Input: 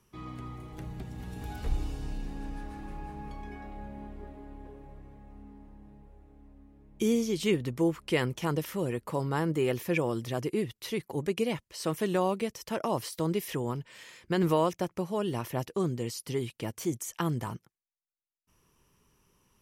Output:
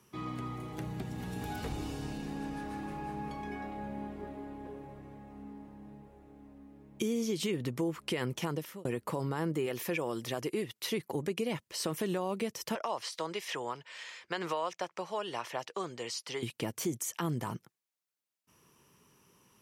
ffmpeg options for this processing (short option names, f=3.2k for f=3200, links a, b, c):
-filter_complex "[0:a]asettb=1/sr,asplit=3[a][b][c];[a]atrim=end=9.664[d];[b]atrim=start=9.66:end=10.91,asetpts=PTS-STARTPTS,afade=t=in:d=0.004:c=qsin,afade=t=out:st=1.246:d=0.004:c=qsin,lowshelf=f=320:g=-8[e];[c]atrim=start=10.906[f];[d][e]acrossfade=d=0.004:c1=hsin:c2=qsin[g];[g][f]acrossfade=d=0.004:c1=qsin:c2=hsin,asettb=1/sr,asplit=3[h][i][j];[h]atrim=end=12.754[k];[i]atrim=start=12.75:end=16.43,asetpts=PTS-STARTPTS,afade=t=in:d=0.004:c=qsin,afade=t=out:st=3.676:d=0.004:c=qsin,acrossover=split=550 7700:gain=0.112 1 0.0708[l][m][n];[l][m][n]amix=inputs=3:normalize=0[o];[j]atrim=start=16.426[p];[k][o]acrossfade=d=0.004:c1=hsin:c2=qsin[q];[q][p]acrossfade=d=0.004:c1=qsin:c2=hsin,asplit=2[r][s];[r]atrim=end=8.85,asetpts=PTS-STARTPTS,afade=t=out:st=8.38:d=0.47[t];[s]atrim=start=8.85,asetpts=PTS-STARTPTS,afade=t=in:d=0.004:c=hsin[u];[t][u]concat=n=2:v=0:a=1,highpass=120,alimiter=limit=-23dB:level=0:latency=1:release=64,acompressor=threshold=-38dB:ratio=2,volume=4.5dB"